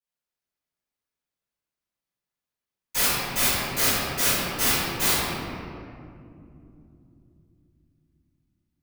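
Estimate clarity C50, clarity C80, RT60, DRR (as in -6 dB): -4.5 dB, -2.0 dB, 2.7 s, -18.0 dB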